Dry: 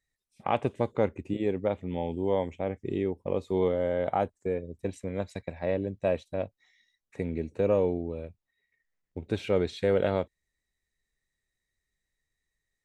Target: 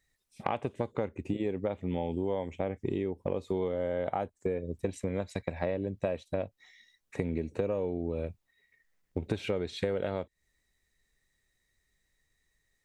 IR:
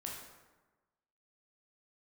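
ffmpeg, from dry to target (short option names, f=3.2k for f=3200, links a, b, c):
-af "acompressor=threshold=-35dB:ratio=12,volume=7.5dB"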